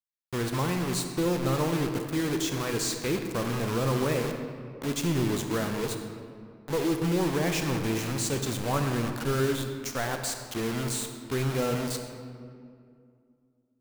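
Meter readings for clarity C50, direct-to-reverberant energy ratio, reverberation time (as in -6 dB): 5.5 dB, 5.0 dB, 2.3 s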